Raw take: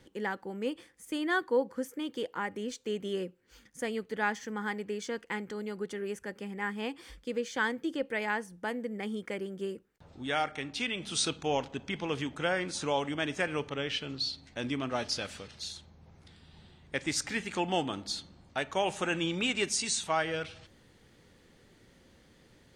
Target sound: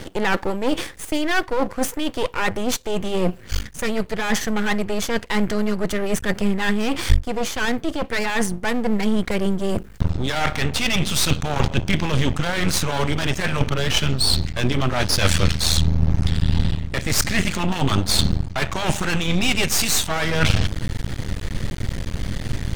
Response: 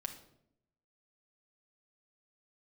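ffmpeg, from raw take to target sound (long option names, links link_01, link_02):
-af "apsyclip=24.5dB,areverse,acompressor=threshold=-19dB:ratio=8,areverse,asubboost=boost=7.5:cutoff=120,aeval=exprs='max(val(0),0)':channel_layout=same,volume=5.5dB"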